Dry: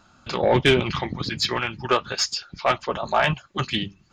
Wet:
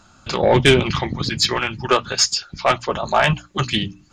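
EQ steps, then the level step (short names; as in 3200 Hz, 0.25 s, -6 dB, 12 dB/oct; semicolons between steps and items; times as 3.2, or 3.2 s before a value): low shelf 160 Hz +5 dB; bell 8500 Hz +8.5 dB 0.98 oct; notches 60/120/180/240/300 Hz; +3.5 dB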